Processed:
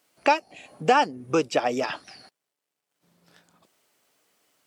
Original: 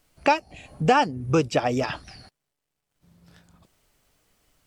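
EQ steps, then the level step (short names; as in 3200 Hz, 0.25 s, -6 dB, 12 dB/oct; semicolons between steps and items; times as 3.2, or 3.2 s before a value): HPF 280 Hz 12 dB/oct; 0.0 dB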